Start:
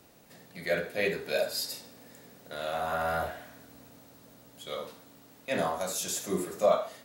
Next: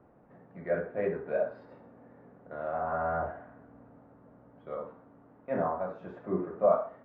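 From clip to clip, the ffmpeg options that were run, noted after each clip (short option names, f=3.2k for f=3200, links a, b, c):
-af "lowpass=f=1.4k:w=0.5412,lowpass=f=1.4k:w=1.3066"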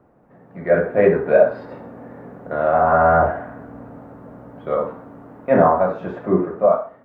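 -af "dynaudnorm=f=100:g=13:m=12.5dB,volume=4.5dB"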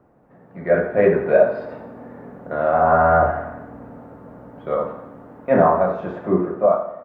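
-af "aecho=1:1:87|174|261|348|435|522:0.224|0.125|0.0702|0.0393|0.022|0.0123,volume=-1dB"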